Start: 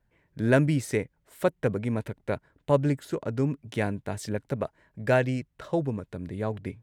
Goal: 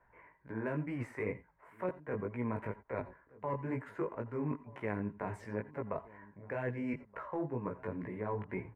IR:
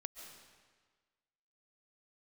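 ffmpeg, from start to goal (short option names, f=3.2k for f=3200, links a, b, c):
-filter_complex "[0:a]aeval=exprs='0.355*(cos(1*acos(clip(val(0)/0.355,-1,1)))-cos(1*PI/2))+0.0355*(cos(5*acos(clip(val(0)/0.355,-1,1)))-cos(5*PI/2))+0.0282*(cos(7*acos(clip(val(0)/0.355,-1,1)))-cos(7*PI/2))':c=same,areverse,acompressor=threshold=-36dB:ratio=6,areverse,firequalizer=gain_entry='entry(100,0);entry(460,11);entry(2100,14);entry(3500,-14)':delay=0.05:min_phase=1,atempo=0.78,flanger=delay=16:depth=4.6:speed=2.1,acrossover=split=370|3000[a][b][c];[b]acompressor=threshold=-45dB:ratio=4[d];[a][d][c]amix=inputs=3:normalize=0,equalizer=f=1k:t=o:w=0.4:g=12,asplit=2[e][f];[f]adelay=1224,volume=-21dB,highshelf=f=4k:g=-27.6[g];[e][g]amix=inputs=2:normalize=0[h];[1:a]atrim=start_sample=2205,atrim=end_sample=6174,asetrate=66150,aresample=44100[i];[h][i]afir=irnorm=-1:irlink=0,volume=8.5dB"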